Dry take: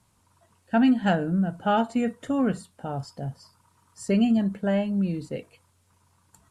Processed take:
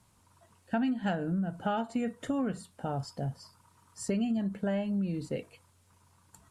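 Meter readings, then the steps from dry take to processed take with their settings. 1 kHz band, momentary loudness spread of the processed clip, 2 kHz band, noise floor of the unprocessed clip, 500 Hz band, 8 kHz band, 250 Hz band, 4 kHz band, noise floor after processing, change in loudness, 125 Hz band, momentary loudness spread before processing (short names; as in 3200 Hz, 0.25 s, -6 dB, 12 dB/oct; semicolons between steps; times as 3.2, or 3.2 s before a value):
-8.0 dB, 8 LU, -8.0 dB, -66 dBFS, -7.0 dB, -1.0 dB, -8.0 dB, -7.5 dB, -66 dBFS, -8.0 dB, -5.5 dB, 15 LU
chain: compressor 4:1, threshold -29 dBFS, peak gain reduction 11 dB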